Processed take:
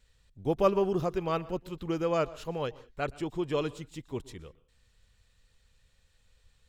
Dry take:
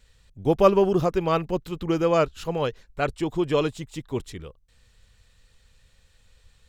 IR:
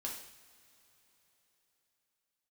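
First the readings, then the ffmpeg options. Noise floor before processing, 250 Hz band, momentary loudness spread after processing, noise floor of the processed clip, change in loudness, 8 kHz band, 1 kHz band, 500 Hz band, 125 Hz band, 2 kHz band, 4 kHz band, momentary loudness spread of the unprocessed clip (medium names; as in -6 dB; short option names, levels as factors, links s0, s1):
-62 dBFS, -7.5 dB, 14 LU, -69 dBFS, -7.5 dB, -7.5 dB, -7.5 dB, -7.5 dB, -7.5 dB, -7.5 dB, -7.5 dB, 14 LU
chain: -filter_complex "[0:a]asplit=2[s0][s1];[1:a]atrim=start_sample=2205,atrim=end_sample=4410,adelay=119[s2];[s1][s2]afir=irnorm=-1:irlink=0,volume=0.119[s3];[s0][s3]amix=inputs=2:normalize=0,volume=0.422"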